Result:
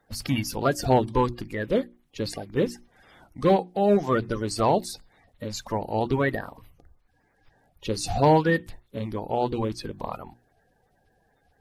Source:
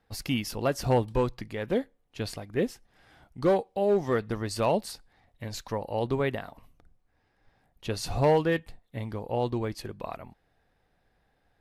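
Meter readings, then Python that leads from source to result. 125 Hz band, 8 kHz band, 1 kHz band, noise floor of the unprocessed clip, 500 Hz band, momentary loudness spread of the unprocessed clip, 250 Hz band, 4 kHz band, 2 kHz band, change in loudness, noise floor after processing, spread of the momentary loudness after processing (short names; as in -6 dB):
+3.0 dB, +4.5 dB, +6.5 dB, -72 dBFS, +2.5 dB, 15 LU, +4.5 dB, +3.0 dB, +4.5 dB, +3.5 dB, -67 dBFS, 15 LU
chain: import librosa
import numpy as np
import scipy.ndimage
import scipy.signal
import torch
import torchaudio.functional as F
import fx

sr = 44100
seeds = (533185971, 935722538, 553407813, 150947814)

y = fx.spec_quant(x, sr, step_db=30)
y = fx.hum_notches(y, sr, base_hz=60, count=6)
y = y * librosa.db_to_amplitude(4.5)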